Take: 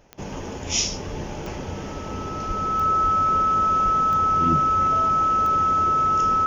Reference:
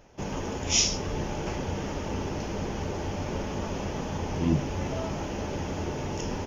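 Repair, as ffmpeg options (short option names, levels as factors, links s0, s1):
-filter_complex "[0:a]adeclick=t=4,bandreject=f=1300:w=30,asplit=3[s0][s1][s2];[s0]afade=t=out:st=2.47:d=0.02[s3];[s1]highpass=f=140:w=0.5412,highpass=f=140:w=1.3066,afade=t=in:st=2.47:d=0.02,afade=t=out:st=2.59:d=0.02[s4];[s2]afade=t=in:st=2.59:d=0.02[s5];[s3][s4][s5]amix=inputs=3:normalize=0,asplit=3[s6][s7][s8];[s6]afade=t=out:st=3.02:d=0.02[s9];[s7]highpass=f=140:w=0.5412,highpass=f=140:w=1.3066,afade=t=in:st=3.02:d=0.02,afade=t=out:st=3.14:d=0.02[s10];[s8]afade=t=in:st=3.14:d=0.02[s11];[s9][s10][s11]amix=inputs=3:normalize=0,asplit=3[s12][s13][s14];[s12]afade=t=out:st=3.84:d=0.02[s15];[s13]highpass=f=140:w=0.5412,highpass=f=140:w=1.3066,afade=t=in:st=3.84:d=0.02,afade=t=out:st=3.96:d=0.02[s16];[s14]afade=t=in:st=3.96:d=0.02[s17];[s15][s16][s17]amix=inputs=3:normalize=0"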